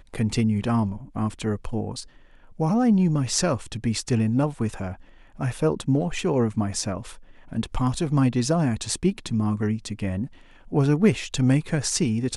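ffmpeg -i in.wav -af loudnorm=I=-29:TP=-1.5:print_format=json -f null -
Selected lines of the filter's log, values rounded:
"input_i" : "-24.3",
"input_tp" : "-5.5",
"input_lra" : "1.5",
"input_thresh" : "-34.7",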